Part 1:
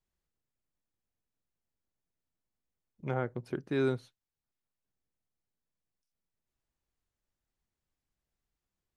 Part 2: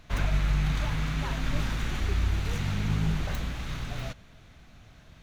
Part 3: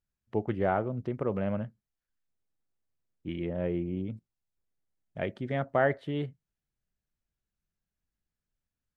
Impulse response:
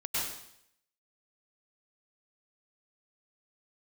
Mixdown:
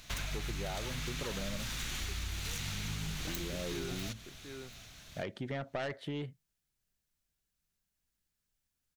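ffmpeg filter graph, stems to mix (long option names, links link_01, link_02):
-filter_complex "[0:a]volume=-7dB,asplit=2[link_01][link_02];[link_02]volume=-12dB[link_03];[1:a]highshelf=frequency=2700:gain=9,volume=-5dB,asplit=2[link_04][link_05];[link_05]volume=-21.5dB[link_06];[2:a]asoftclip=type=tanh:threshold=-24.5dB,volume=-0.5dB,asplit=2[link_07][link_08];[link_08]apad=whole_len=395278[link_09];[link_01][link_09]sidechaingate=range=-33dB:threshold=-59dB:ratio=16:detection=peak[link_10];[link_03][link_06]amix=inputs=2:normalize=0,aecho=0:1:734:1[link_11];[link_10][link_04][link_07][link_11]amix=inputs=4:normalize=0,highshelf=frequency=2300:gain=10,acompressor=threshold=-35dB:ratio=6"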